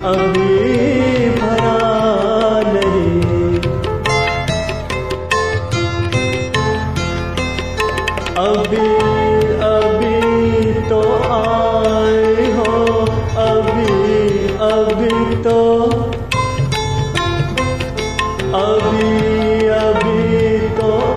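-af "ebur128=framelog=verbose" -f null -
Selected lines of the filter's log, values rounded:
Integrated loudness:
  I:         -14.9 LUFS
  Threshold: -24.9 LUFS
Loudness range:
  LRA:         3.4 LU
  Threshold: -35.1 LUFS
  LRA low:   -17.2 LUFS
  LRA high:  -13.8 LUFS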